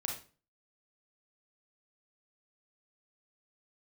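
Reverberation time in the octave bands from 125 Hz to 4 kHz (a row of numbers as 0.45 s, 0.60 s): 0.50 s, 0.45 s, 0.40 s, 0.35 s, 0.35 s, 0.30 s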